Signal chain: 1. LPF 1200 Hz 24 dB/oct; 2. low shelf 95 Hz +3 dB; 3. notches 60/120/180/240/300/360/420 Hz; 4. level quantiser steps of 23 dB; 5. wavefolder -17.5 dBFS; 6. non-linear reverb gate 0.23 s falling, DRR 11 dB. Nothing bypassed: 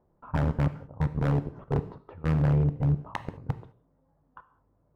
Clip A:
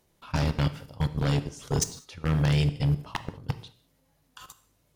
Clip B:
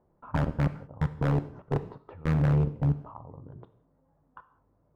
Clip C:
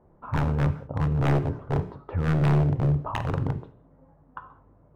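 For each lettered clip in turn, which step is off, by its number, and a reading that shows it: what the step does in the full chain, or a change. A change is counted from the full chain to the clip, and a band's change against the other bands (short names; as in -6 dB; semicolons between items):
1, 2 kHz band +4.5 dB; 2, momentary loudness spread change +8 LU; 4, crest factor change -2.0 dB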